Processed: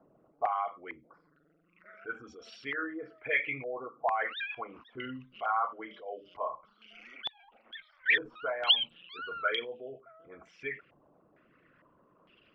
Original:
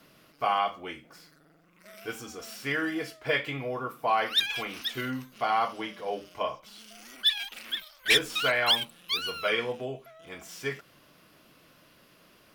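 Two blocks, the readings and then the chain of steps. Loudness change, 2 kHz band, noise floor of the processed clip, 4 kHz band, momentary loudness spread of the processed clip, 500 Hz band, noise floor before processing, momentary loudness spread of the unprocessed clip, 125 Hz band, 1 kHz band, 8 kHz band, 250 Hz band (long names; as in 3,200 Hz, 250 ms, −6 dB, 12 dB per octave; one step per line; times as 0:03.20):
−4.5 dB, −3.0 dB, −68 dBFS, −5.5 dB, 20 LU, −6.0 dB, −60 dBFS, 19 LU, −13.0 dB, −4.5 dB, below −25 dB, −8.5 dB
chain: spectral envelope exaggerated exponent 2
low-pass on a step sequencer 2.2 Hz 810–3,600 Hz
level −8.5 dB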